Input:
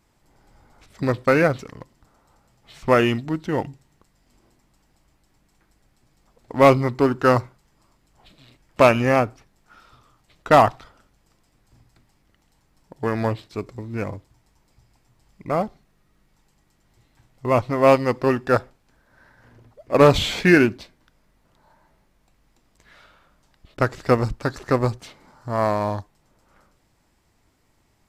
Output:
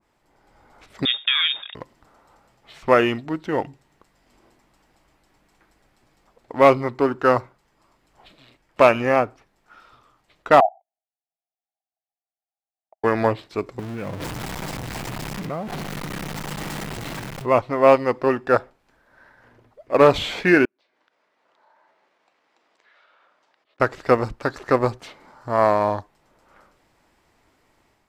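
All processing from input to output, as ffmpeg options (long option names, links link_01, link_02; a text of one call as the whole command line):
ffmpeg -i in.wav -filter_complex "[0:a]asettb=1/sr,asplit=3[link_01][link_02][link_03];[link_01]atrim=end=1.054[link_04];[link_02]atrim=start=1.05:end=1.75,asetpts=PTS-STARTPTS,afade=type=in:duration=0.004:curve=qsin,afade=type=out:start_time=0.696:duration=0.004:curve=qsin,acompressor=threshold=-20dB:ratio=3:attack=3.2:release=140:knee=1:detection=peak,lowpass=frequency=3200:width_type=q:width=0.5098,lowpass=frequency=3200:width_type=q:width=0.6013,lowpass=frequency=3200:width_type=q:width=0.9,lowpass=frequency=3200:width_type=q:width=2.563,afreqshift=-3800[link_05];[link_03]atrim=start=1.746[link_06];[link_04][link_05]acrossfade=duration=0.004:curve1=hsin:curve2=qsin[link_07];[link_07][link_06]acrossfade=duration=0.004:curve1=qsin:curve2=hsin,asettb=1/sr,asplit=3[link_08][link_09][link_10];[link_08]atrim=end=10.604[link_11];[link_09]atrim=start=10.6:end=13.04,asetpts=PTS-STARTPTS,afade=type=in:duration=0.004:curve=qsin,afade=type=out:start_time=2.436:duration=0.004:curve=qsin,asuperpass=centerf=720:order=8:qfactor=3.8,agate=range=-30dB:threshold=-54dB:ratio=16:release=100:detection=peak[link_12];[link_10]atrim=start=13.036[link_13];[link_11][link_12]acrossfade=duration=0.004:curve1=hsin:curve2=qsin[link_14];[link_14][link_13]acrossfade=duration=0.004:curve1=qsin:curve2=hsin,asettb=1/sr,asplit=3[link_15][link_16][link_17];[link_15]atrim=end=13.794[link_18];[link_16]atrim=start=13.79:end=17.46,asetpts=PTS-STARTPTS,afade=type=in:duration=0.004:curve=qsin,afade=type=out:start_time=3.666:duration=0.004:curve=qsin,aeval=exprs='val(0)+0.5*0.0422*sgn(val(0))':channel_layout=same,equalizer=frequency=160:width_type=o:width=0.93:gain=11,acompressor=threshold=-27dB:ratio=12:attack=3.2:release=140:knee=1:detection=peak[link_19];[link_17]atrim=start=17.456[link_20];[link_18][link_19]acrossfade=duration=0.004:curve1=hsin:curve2=qsin[link_21];[link_21][link_20]acrossfade=duration=0.004:curve1=qsin:curve2=hsin,asettb=1/sr,asplit=3[link_22][link_23][link_24];[link_22]atrim=end=20.654[link_25];[link_23]atrim=start=20.65:end=23.8,asetpts=PTS-STARTPTS,afade=type=in:duration=0.004:curve=qsin,afade=type=out:start_time=3.146:duration=0.004:curve=qsin,acompressor=threshold=-58dB:ratio=20:attack=3.2:release=140:knee=1:detection=peak,highpass=420,lowpass=5400[link_26];[link_24]atrim=start=23.796[link_27];[link_25][link_26]acrossfade=duration=0.004:curve1=hsin:curve2=qsin[link_28];[link_28][link_27]acrossfade=duration=0.004:curve1=qsin:curve2=hsin,bass=frequency=250:gain=-9,treble=frequency=4000:gain=-7,dynaudnorm=framelen=410:gausssize=3:maxgain=6dB,adynamicequalizer=threshold=0.0251:dfrequency=1600:dqfactor=0.7:tfrequency=1600:tqfactor=0.7:attack=5:release=100:ratio=0.375:range=1.5:mode=cutabove:tftype=highshelf" out.wav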